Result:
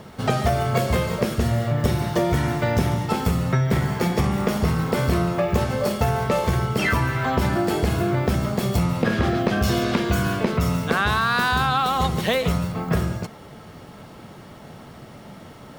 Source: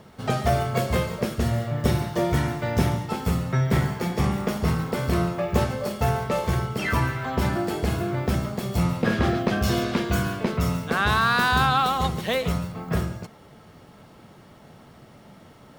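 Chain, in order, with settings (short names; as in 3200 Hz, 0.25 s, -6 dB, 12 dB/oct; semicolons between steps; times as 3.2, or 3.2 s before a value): compressor, threshold -24 dBFS, peak gain reduction 8.5 dB; gain +7 dB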